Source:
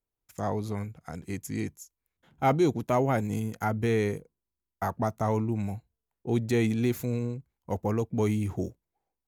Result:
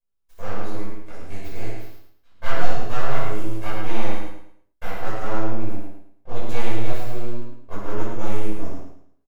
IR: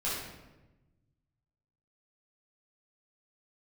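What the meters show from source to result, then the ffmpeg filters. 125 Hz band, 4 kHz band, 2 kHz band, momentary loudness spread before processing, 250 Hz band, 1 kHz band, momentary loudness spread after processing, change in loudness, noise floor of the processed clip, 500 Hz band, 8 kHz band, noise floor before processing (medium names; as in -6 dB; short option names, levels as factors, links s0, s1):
-1.5 dB, +5.0 dB, +4.5 dB, 12 LU, -4.0 dB, +0.5 dB, 12 LU, -2.5 dB, -67 dBFS, -2.0 dB, -2.5 dB, under -85 dBFS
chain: -filter_complex "[0:a]aeval=exprs='abs(val(0))':c=same,aecho=1:1:109|218|327|436:0.531|0.165|0.051|0.0158[s0];[1:a]atrim=start_sample=2205,afade=t=out:st=0.21:d=0.01,atrim=end_sample=9702[s1];[s0][s1]afir=irnorm=-1:irlink=0,volume=0.562"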